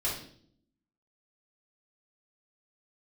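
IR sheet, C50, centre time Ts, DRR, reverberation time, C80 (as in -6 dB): 4.0 dB, 38 ms, -7.5 dB, no single decay rate, 9.0 dB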